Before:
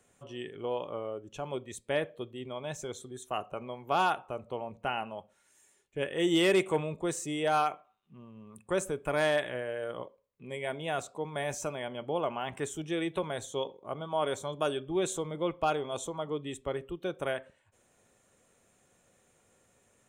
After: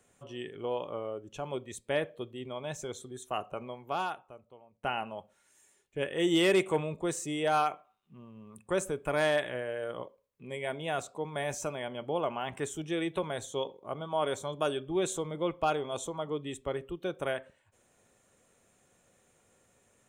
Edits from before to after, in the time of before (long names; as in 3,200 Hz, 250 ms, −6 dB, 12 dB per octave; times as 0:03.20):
0:03.61–0:04.83: fade out quadratic, to −21.5 dB